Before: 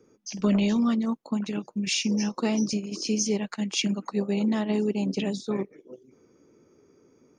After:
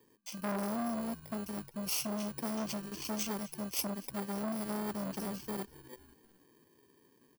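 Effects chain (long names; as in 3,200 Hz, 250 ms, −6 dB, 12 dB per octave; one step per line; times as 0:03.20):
samples in bit-reversed order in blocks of 32 samples
on a send: echo with shifted repeats 251 ms, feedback 48%, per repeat −67 Hz, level −21 dB
on the sum: saturating transformer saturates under 1,300 Hz
level −7 dB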